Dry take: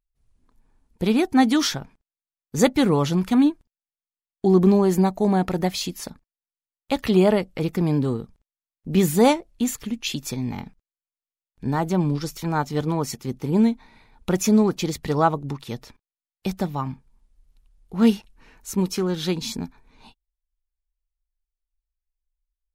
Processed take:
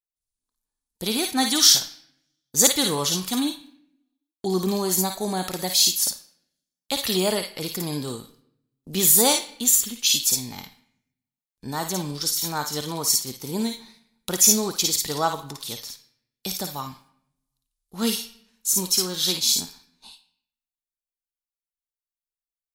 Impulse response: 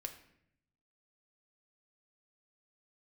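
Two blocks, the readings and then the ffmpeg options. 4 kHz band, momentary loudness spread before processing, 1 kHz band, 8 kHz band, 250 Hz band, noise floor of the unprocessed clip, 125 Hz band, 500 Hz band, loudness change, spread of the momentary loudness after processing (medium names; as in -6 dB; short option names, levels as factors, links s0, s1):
+10.0 dB, 15 LU, -3.5 dB, +14.5 dB, -8.5 dB, under -85 dBFS, -9.5 dB, -6.0 dB, +1.0 dB, 18 LU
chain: -filter_complex "[0:a]aexciter=amount=5.5:drive=2.4:freq=3400,lowshelf=f=400:g=-8.5,agate=range=0.126:threshold=0.00398:ratio=16:detection=peak,asplit=2[s0][s1];[s1]tiltshelf=f=900:g=-8.5[s2];[1:a]atrim=start_sample=2205,adelay=54[s3];[s2][s3]afir=irnorm=-1:irlink=0,volume=0.531[s4];[s0][s4]amix=inputs=2:normalize=0,volume=0.75"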